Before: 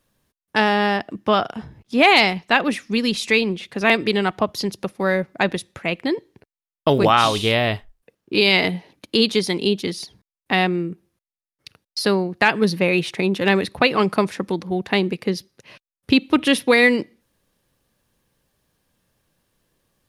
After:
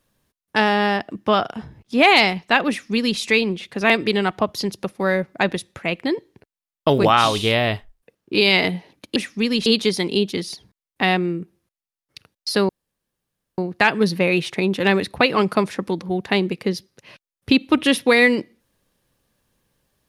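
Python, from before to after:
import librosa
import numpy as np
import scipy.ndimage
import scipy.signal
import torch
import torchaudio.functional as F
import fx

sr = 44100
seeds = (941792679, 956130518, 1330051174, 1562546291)

y = fx.edit(x, sr, fx.duplicate(start_s=2.69, length_s=0.5, to_s=9.16),
    fx.insert_room_tone(at_s=12.19, length_s=0.89), tone=tone)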